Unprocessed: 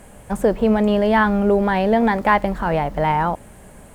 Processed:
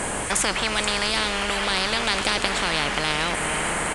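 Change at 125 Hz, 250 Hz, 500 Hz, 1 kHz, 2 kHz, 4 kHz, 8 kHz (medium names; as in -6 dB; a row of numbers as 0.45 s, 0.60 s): -9.0 dB, -13.0 dB, -10.5 dB, -6.5 dB, +2.0 dB, +14.5 dB, no reading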